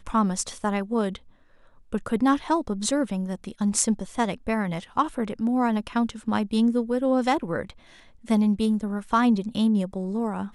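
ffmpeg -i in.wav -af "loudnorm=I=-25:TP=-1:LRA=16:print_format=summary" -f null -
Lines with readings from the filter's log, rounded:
Input Integrated:    -25.0 LUFS
Input True Peak:      -3.9 dBTP
Input LRA:             1.8 LU
Input Threshold:     -35.5 LUFS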